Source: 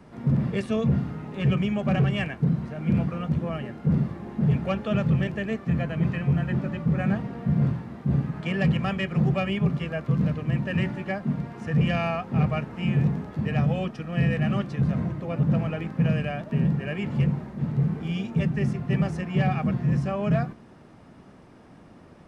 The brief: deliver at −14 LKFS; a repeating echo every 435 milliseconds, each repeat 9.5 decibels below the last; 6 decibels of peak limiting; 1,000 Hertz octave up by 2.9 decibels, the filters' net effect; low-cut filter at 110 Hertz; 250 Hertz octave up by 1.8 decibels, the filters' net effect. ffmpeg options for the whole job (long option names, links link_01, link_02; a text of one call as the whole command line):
ffmpeg -i in.wav -af "highpass=110,equalizer=frequency=250:width_type=o:gain=3.5,equalizer=frequency=1000:width_type=o:gain=4,alimiter=limit=-16.5dB:level=0:latency=1,aecho=1:1:435|870|1305|1740:0.335|0.111|0.0365|0.012,volume=12.5dB" out.wav